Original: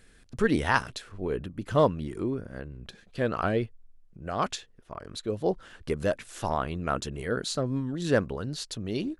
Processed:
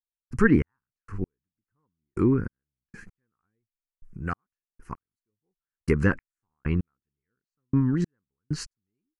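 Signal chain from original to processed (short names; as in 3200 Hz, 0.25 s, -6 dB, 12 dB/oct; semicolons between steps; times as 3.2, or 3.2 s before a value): de-esser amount 75%; fixed phaser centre 1500 Hz, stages 4; treble ducked by the level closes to 2100 Hz, closed at -27 dBFS; in parallel at +2 dB: vocal rider 2 s; on the sum: step gate "..xx...x...." 97 bpm -60 dB; gain +3 dB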